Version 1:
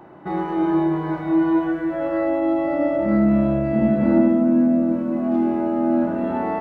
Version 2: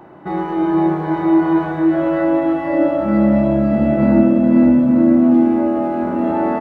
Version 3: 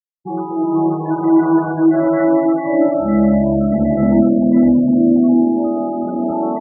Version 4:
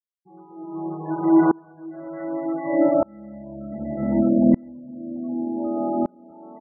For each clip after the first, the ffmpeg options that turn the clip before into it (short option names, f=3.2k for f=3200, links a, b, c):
-af "aecho=1:1:510|867|1117|1292|1414:0.631|0.398|0.251|0.158|0.1,volume=3dB"
-af "dynaudnorm=f=210:g=13:m=15dB,afftfilt=real='re*gte(hypot(re,im),0.126)':imag='im*gte(hypot(re,im),0.126)':win_size=1024:overlap=0.75,volume=-1dB"
-af "aeval=exprs='val(0)*pow(10,-32*if(lt(mod(-0.66*n/s,1),2*abs(-0.66)/1000),1-mod(-0.66*n/s,1)/(2*abs(-0.66)/1000),(mod(-0.66*n/s,1)-2*abs(-0.66)/1000)/(1-2*abs(-0.66)/1000))/20)':c=same"